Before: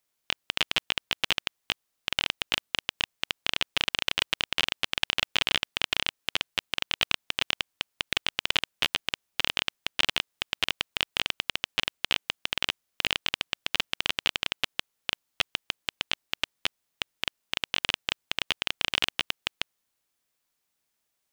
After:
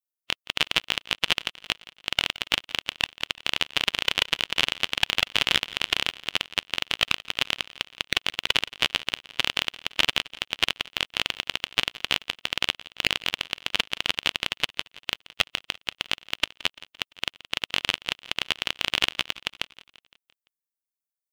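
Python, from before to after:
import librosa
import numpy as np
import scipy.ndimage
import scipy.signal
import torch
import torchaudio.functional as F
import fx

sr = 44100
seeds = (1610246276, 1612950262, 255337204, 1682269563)

y = fx.bin_expand(x, sr, power=1.5)
y = fx.echo_feedback(y, sr, ms=171, feedback_pct=55, wet_db=-19.0)
y = y * librosa.db_to_amplitude(6.0)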